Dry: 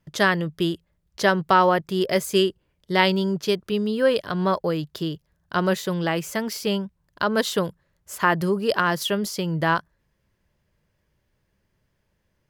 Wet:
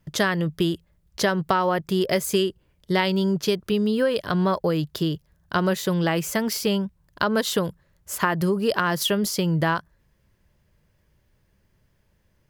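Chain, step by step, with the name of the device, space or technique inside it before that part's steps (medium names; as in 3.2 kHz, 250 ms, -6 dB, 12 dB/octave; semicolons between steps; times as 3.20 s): ASMR close-microphone chain (bass shelf 150 Hz +5 dB; compression, threshold -21 dBFS, peak gain reduction 9 dB; treble shelf 9.7 kHz +4.5 dB); trim +3 dB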